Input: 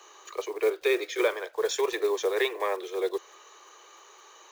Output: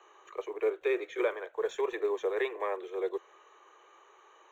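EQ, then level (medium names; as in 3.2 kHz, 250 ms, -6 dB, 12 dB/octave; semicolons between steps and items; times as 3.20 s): boxcar filter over 9 samples; -4.0 dB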